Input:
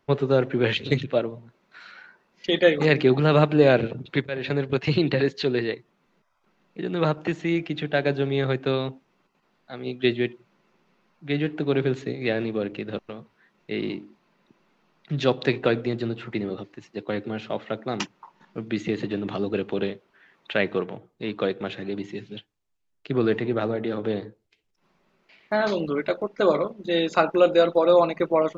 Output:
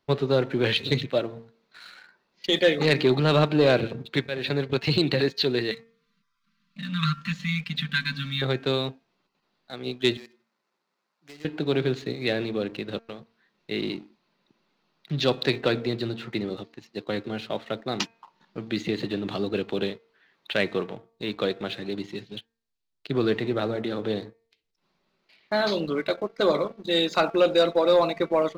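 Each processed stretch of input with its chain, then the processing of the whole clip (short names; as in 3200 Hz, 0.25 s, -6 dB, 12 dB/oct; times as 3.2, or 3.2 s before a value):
5.71–8.42 brick-wall FIR band-stop 280–1000 Hz + comb 5.1 ms, depth 69% + de-hum 46.51 Hz, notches 15
10.17–11.45 median filter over 15 samples + HPF 1000 Hz 6 dB/oct + compressor 5:1, threshold -40 dBFS
whole clip: bell 4200 Hz +9.5 dB 0.7 oct; de-hum 228.1 Hz, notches 11; sample leveller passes 1; gain -5 dB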